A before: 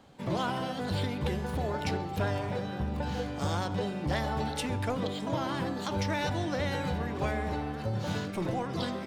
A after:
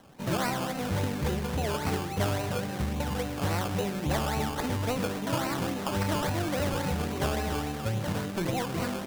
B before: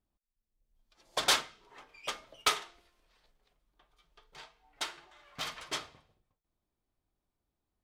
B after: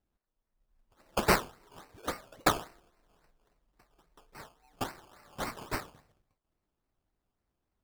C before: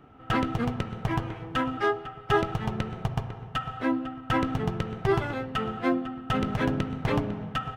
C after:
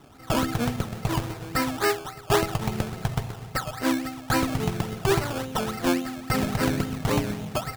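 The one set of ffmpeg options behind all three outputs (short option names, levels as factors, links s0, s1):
-af "acrusher=samples=18:mix=1:aa=0.000001:lfo=1:lforange=10.8:lforate=3.6,volume=1.26"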